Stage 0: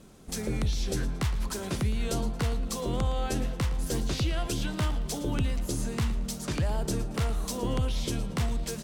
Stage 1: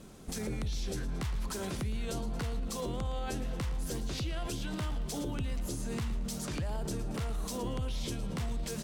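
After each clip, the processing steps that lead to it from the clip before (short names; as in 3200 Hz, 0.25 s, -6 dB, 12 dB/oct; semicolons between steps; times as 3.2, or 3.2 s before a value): limiter -29.5 dBFS, peak gain reduction 9.5 dB; gain +1.5 dB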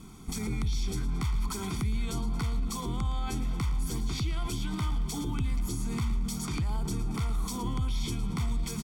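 comb 0.9 ms, depth 91%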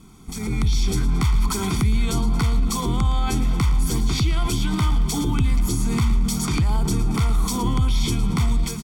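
AGC gain up to 10.5 dB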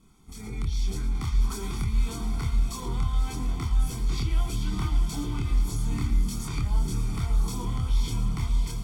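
diffused feedback echo 0.577 s, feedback 45%, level -7 dB; chorus voices 4, 0.25 Hz, delay 26 ms, depth 1.8 ms; gain -8 dB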